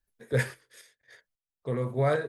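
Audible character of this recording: random-step tremolo 3.7 Hz, depth 85%

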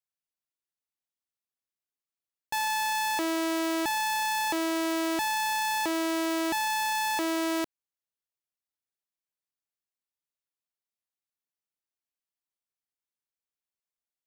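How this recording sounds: noise floor -94 dBFS; spectral tilt -2.0 dB/octave

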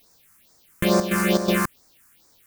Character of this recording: aliases and images of a low sample rate 13 kHz; chopped level 2.7 Hz, depth 65%, duty 70%; a quantiser's noise floor 10-bit, dither triangular; phasing stages 4, 2.3 Hz, lowest notch 550–2900 Hz

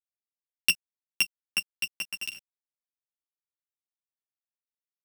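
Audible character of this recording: a buzz of ramps at a fixed pitch in blocks of 16 samples; chopped level 3.6 Hz, depth 65%, duty 20%; a quantiser's noise floor 10-bit, dither none; a shimmering, thickened sound

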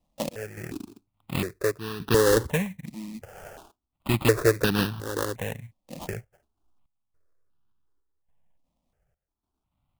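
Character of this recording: random-step tremolo, depth 85%; aliases and images of a low sample rate 2.2 kHz, jitter 20%; notches that jump at a steady rate 2.8 Hz 410–2100 Hz

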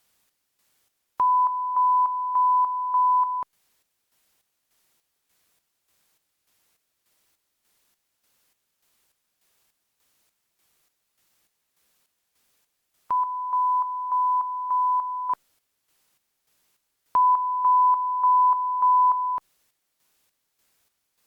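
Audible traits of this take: a quantiser's noise floor 12-bit, dither triangular; chopped level 1.7 Hz, depth 60%, duty 50%; Opus

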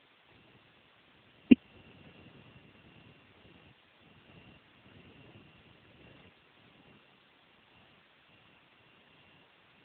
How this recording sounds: a buzz of ramps at a fixed pitch in blocks of 16 samples; random-step tremolo, depth 90%; a quantiser's noise floor 10-bit, dither triangular; AMR-NB

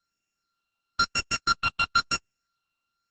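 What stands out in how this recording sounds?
a buzz of ramps at a fixed pitch in blocks of 32 samples; phasing stages 6, 1 Hz, lowest notch 460–1100 Hz; Opus

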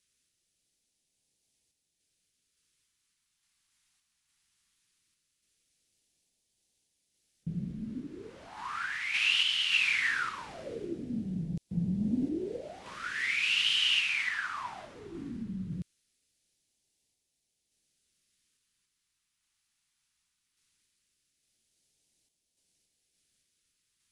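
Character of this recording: a quantiser's noise floor 12-bit, dither triangular; random-step tremolo; phasing stages 2, 0.19 Hz, lowest notch 500–1200 Hz; AAC

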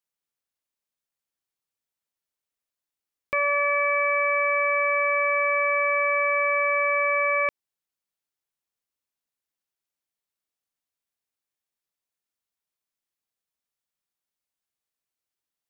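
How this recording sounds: noise floor -90 dBFS; spectral tilt -2.0 dB/octave

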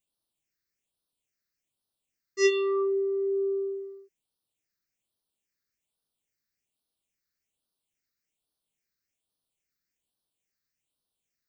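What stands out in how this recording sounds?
phasing stages 6, 1.2 Hz, lowest notch 800–2100 Hz

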